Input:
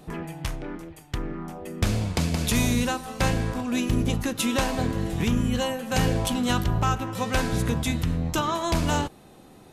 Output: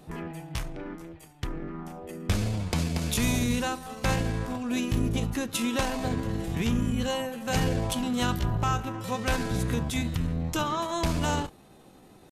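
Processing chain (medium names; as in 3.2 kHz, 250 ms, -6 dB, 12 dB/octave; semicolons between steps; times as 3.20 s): tempo 0.79×; trim -3 dB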